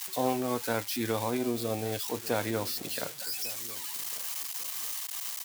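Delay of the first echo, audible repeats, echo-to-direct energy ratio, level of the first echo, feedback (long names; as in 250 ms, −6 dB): 1,148 ms, 2, −19.0 dB, −19.5 dB, 27%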